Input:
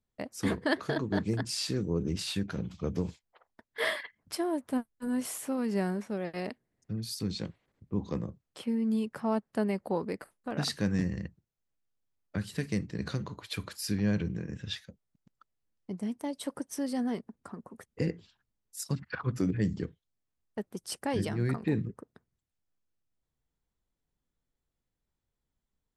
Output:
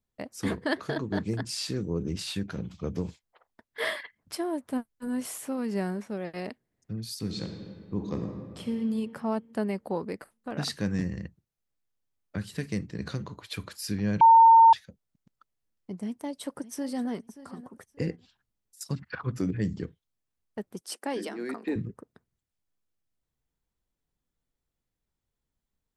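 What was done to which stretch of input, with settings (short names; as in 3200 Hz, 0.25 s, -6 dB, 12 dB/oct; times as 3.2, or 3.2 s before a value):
7.18–8.76 reverb throw, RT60 2 s, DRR 3.5 dB
14.21–14.73 bleep 909 Hz -11.5 dBFS
16.05–17.09 echo throw 0.58 s, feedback 20%, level -15.5 dB
18.15–18.81 compressor, threshold -54 dBFS
20.81–21.76 steep high-pass 240 Hz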